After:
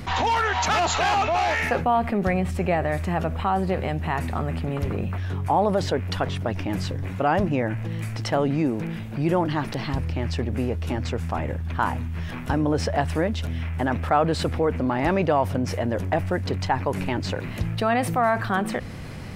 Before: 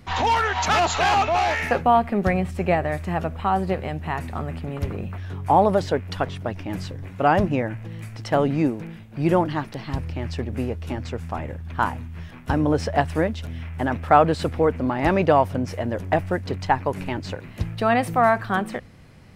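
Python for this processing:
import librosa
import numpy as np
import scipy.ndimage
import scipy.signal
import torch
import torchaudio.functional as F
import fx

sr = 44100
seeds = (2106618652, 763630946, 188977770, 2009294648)

y = fx.env_flatten(x, sr, amount_pct=50)
y = F.gain(torch.from_numpy(y), -6.0).numpy()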